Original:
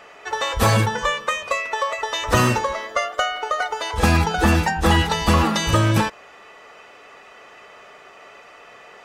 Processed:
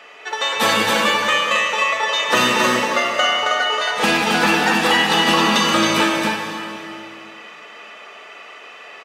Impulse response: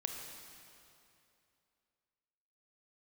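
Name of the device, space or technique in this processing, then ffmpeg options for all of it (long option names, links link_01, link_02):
stadium PA: -filter_complex "[0:a]highpass=frequency=190:width=0.5412,highpass=frequency=190:width=1.3066,equalizer=frequency=2900:width_type=o:width=1.5:gain=7.5,aecho=1:1:192.4|271.1:0.282|0.708[link_01];[1:a]atrim=start_sample=2205[link_02];[link_01][link_02]afir=irnorm=-1:irlink=0"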